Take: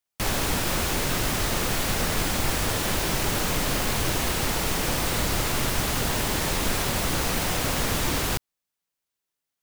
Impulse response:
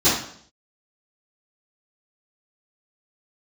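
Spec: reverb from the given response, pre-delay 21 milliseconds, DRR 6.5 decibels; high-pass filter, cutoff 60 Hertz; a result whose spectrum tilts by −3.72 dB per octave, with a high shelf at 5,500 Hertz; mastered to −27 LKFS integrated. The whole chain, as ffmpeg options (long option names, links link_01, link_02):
-filter_complex "[0:a]highpass=60,highshelf=frequency=5500:gain=-3.5,asplit=2[link_01][link_02];[1:a]atrim=start_sample=2205,adelay=21[link_03];[link_02][link_03]afir=irnorm=-1:irlink=0,volume=-25.5dB[link_04];[link_01][link_04]amix=inputs=2:normalize=0,volume=-2dB"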